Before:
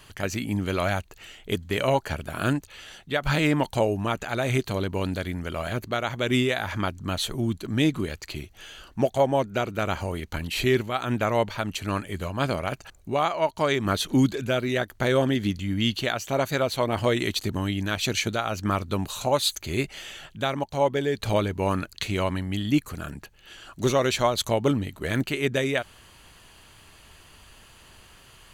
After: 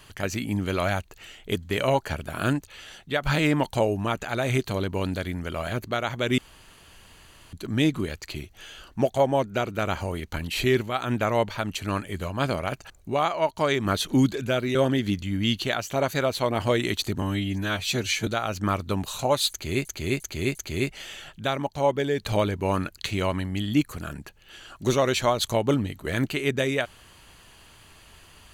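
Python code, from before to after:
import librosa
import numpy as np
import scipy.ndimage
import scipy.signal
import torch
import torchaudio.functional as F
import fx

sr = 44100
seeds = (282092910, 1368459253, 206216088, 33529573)

y = fx.edit(x, sr, fx.room_tone_fill(start_s=6.38, length_s=1.15),
    fx.cut(start_s=14.75, length_s=0.37),
    fx.stretch_span(start_s=17.59, length_s=0.7, factor=1.5),
    fx.repeat(start_s=19.52, length_s=0.35, count=4), tone=tone)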